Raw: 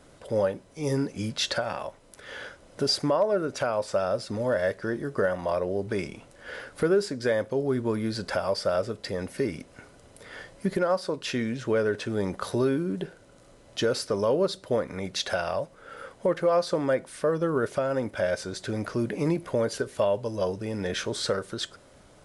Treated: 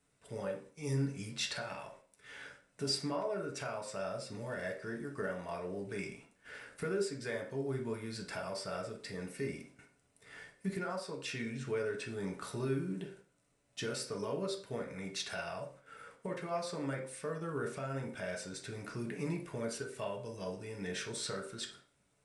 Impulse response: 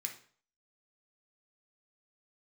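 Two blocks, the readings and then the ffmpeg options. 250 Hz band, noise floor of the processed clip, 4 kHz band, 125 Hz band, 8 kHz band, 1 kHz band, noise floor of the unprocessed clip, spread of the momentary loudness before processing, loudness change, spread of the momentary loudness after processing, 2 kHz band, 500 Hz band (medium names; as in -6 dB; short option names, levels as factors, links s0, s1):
-11.0 dB, -74 dBFS, -9.5 dB, -7.5 dB, -6.0 dB, -11.0 dB, -55 dBFS, 12 LU, -11.5 dB, 13 LU, -8.5 dB, -13.5 dB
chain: -filter_complex "[0:a]agate=range=0.316:threshold=0.00447:ratio=16:detection=peak[s0];[1:a]atrim=start_sample=2205,asetrate=48510,aresample=44100[s1];[s0][s1]afir=irnorm=-1:irlink=0,volume=0.501"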